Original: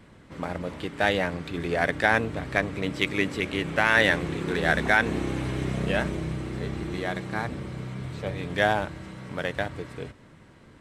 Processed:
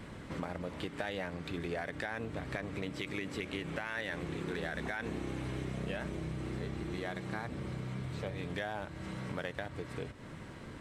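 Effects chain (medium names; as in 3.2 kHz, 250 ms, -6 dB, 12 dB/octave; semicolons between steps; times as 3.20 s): peak limiter -14.5 dBFS, peak gain reduction 8 dB; compression 4:1, threshold -43 dBFS, peak gain reduction 17.5 dB; trim +5 dB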